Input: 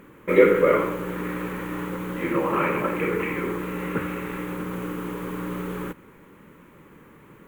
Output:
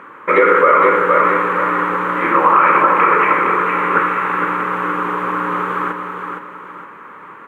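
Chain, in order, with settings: band-pass filter 1.2 kHz, Q 2.2; feedback delay 464 ms, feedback 36%, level -6 dB; loudness maximiser +21.5 dB; trim -1 dB

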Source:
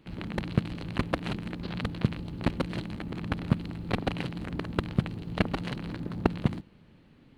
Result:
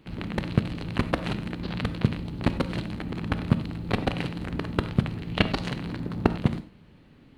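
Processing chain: 5.15–5.67 s: peaking EQ 1.5 kHz -> 6.7 kHz +8.5 dB 0.91 oct; gated-style reverb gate 120 ms flat, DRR 11 dB; trim +3 dB

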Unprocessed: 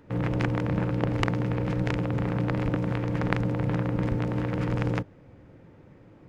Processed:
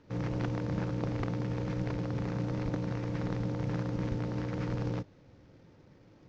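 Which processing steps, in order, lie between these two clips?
CVSD coder 32 kbps; trim -6 dB

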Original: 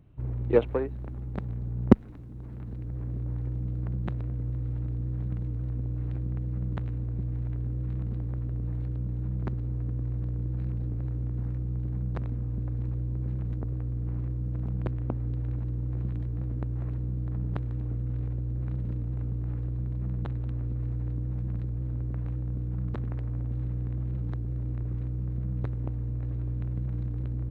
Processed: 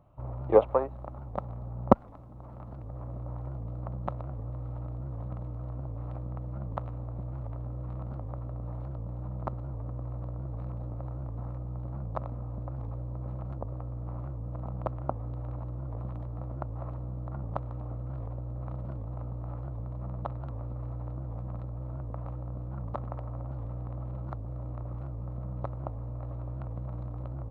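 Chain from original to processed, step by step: high-order bell 850 Hz +15.5 dB 1.3 oct; small resonant body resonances 540/1300 Hz, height 7 dB, ringing for 30 ms; warped record 78 rpm, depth 160 cents; trim -6 dB

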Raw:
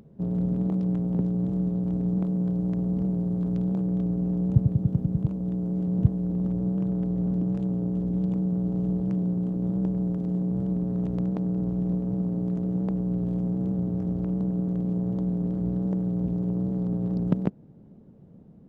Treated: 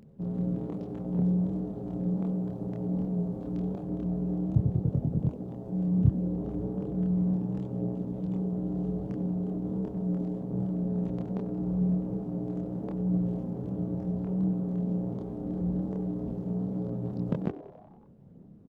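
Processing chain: frequency-shifting echo 93 ms, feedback 62%, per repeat +110 Hz, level -18 dB; chorus voices 2, 0.38 Hz, delay 27 ms, depth 3.2 ms

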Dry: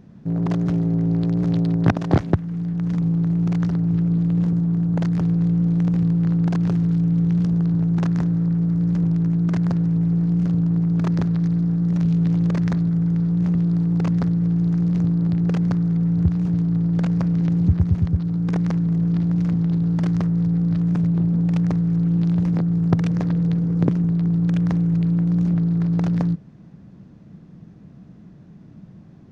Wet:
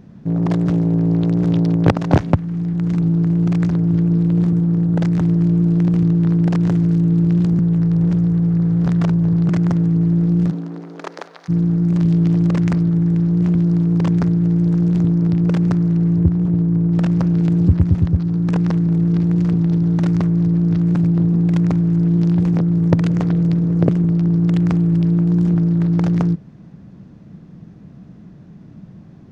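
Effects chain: 7.59–9.49 s: reverse; 10.50–11.48 s: high-pass 210 Hz -> 650 Hz 24 dB/octave; 16.18–16.92 s: treble shelf 2.2 kHz -12 dB; loudspeaker Doppler distortion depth 0.62 ms; trim +4 dB

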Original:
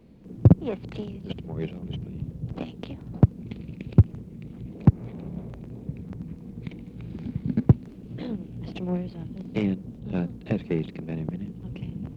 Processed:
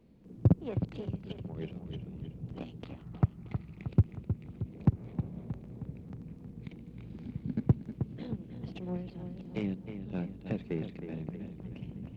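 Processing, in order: 2.84–3.87 s: graphic EQ with 31 bands 250 Hz -10 dB, 500 Hz -11 dB, 800 Hz +4 dB, 1.25 kHz +10 dB, 2 kHz +7 dB, 3.15 kHz -6 dB; feedback echo behind a low-pass 314 ms, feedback 54%, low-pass 3.4 kHz, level -9 dB; trim -8.5 dB

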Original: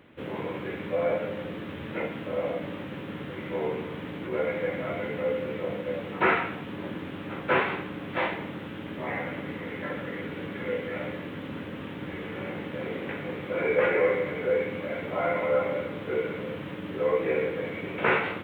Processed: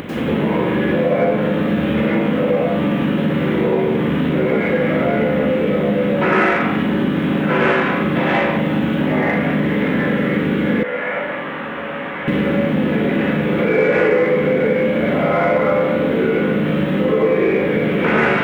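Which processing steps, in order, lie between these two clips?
flutter echo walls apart 6.7 m, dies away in 0.36 s; upward compressor, threshold -29 dBFS; peaking EQ 210 Hz +6 dB 1.6 oct; reverberation RT60 0.85 s, pre-delay 87 ms, DRR -8 dB; in parallel at -9.5 dB: saturation -20 dBFS, distortion -8 dB; 10.83–12.28 s: on the sum: three-band isolator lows -20 dB, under 590 Hz, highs -16 dB, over 2.5 kHz; compression 2.5:1, threshold -21 dBFS, peak gain reduction 9 dB; trim +5.5 dB

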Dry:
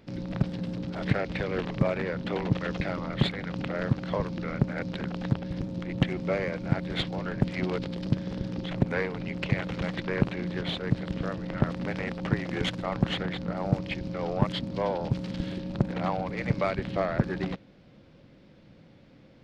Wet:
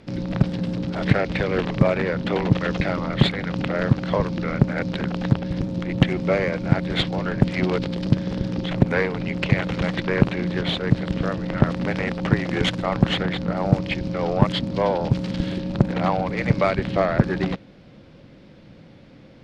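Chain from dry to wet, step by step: low-pass 12 kHz 24 dB/octave; trim +7.5 dB

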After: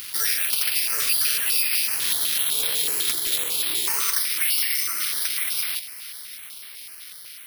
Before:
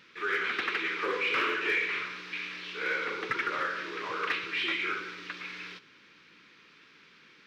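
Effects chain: Doppler pass-by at 2.65 s, 34 m/s, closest 22 m; pre-emphasis filter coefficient 0.8; time-frequency box 1.97–3.87 s, 790–3100 Hz -27 dB; tilt shelf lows -9 dB, about 1.4 kHz; compression 6:1, threshold -58 dBFS, peak gain reduction 20 dB; on a send: feedback echo behind a high-pass 402 ms, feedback 70%, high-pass 1.8 kHz, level -18 dB; on the sum: careless resampling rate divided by 6×, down none, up zero stuff; loudness maximiser +33 dB; step-sequenced notch 8 Hz 680–6900 Hz; trim -3 dB

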